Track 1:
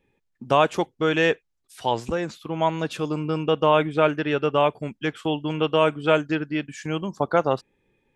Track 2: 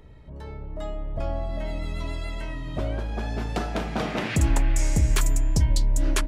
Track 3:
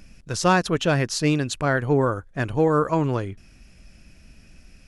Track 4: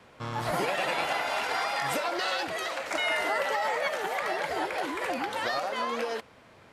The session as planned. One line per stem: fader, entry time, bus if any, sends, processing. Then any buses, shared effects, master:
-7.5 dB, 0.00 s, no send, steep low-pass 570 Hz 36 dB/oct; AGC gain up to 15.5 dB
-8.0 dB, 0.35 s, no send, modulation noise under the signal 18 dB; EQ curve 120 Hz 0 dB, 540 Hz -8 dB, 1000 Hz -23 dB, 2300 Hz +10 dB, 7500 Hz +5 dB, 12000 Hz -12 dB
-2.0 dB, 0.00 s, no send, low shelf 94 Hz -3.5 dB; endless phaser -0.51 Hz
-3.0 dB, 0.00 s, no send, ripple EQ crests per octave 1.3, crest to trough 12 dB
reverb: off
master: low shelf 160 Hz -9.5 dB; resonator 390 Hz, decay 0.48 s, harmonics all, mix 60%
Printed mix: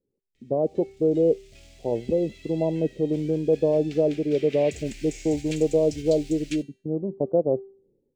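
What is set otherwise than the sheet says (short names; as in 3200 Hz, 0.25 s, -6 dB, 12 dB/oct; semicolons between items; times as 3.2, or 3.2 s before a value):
stem 1 -7.5 dB -> 0.0 dB; stem 3: muted; stem 4: muted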